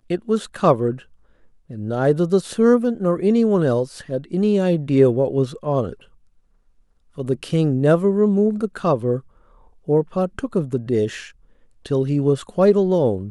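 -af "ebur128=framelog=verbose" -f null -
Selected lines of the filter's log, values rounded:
Integrated loudness:
  I:         -19.6 LUFS
  Threshold: -30.6 LUFS
Loudness range:
  LRA:         4.5 LU
  Threshold: -40.7 LUFS
  LRA low:   -23.1 LUFS
  LRA high:  -18.6 LUFS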